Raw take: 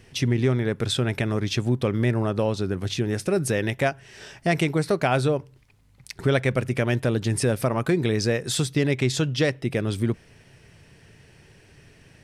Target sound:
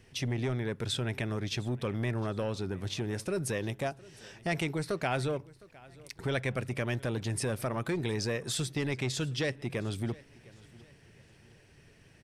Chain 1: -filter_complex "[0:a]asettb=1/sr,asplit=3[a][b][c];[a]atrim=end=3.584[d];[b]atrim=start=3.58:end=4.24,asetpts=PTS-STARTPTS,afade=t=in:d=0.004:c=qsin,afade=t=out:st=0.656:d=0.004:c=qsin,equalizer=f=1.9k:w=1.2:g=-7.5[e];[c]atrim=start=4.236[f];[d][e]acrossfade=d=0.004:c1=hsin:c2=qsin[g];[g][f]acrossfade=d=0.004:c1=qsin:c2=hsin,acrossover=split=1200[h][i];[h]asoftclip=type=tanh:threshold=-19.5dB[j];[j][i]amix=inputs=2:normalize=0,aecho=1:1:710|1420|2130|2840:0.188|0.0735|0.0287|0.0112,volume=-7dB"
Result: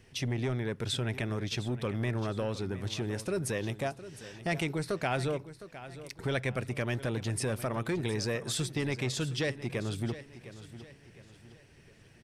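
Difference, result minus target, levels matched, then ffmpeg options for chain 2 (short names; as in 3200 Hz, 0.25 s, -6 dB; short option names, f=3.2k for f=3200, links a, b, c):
echo-to-direct +8 dB
-filter_complex "[0:a]asettb=1/sr,asplit=3[a][b][c];[a]atrim=end=3.584[d];[b]atrim=start=3.58:end=4.24,asetpts=PTS-STARTPTS,afade=t=in:d=0.004:c=qsin,afade=t=out:st=0.656:d=0.004:c=qsin,equalizer=f=1.9k:w=1.2:g=-7.5[e];[c]atrim=start=4.236[f];[d][e]acrossfade=d=0.004:c1=hsin:c2=qsin[g];[g][f]acrossfade=d=0.004:c1=qsin:c2=hsin,acrossover=split=1200[h][i];[h]asoftclip=type=tanh:threshold=-19.5dB[j];[j][i]amix=inputs=2:normalize=0,aecho=1:1:710|1420|2130:0.075|0.0292|0.0114,volume=-7dB"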